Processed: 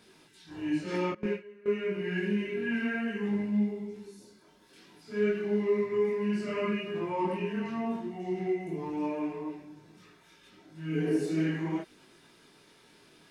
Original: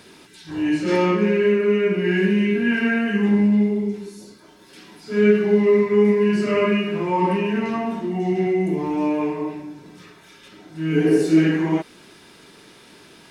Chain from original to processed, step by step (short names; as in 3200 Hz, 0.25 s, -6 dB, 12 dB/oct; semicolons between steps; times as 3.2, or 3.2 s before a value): 1.12–1.66 gate with hold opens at -8 dBFS; chorus voices 4, 0.52 Hz, delay 22 ms, depth 4.6 ms; gain -8.5 dB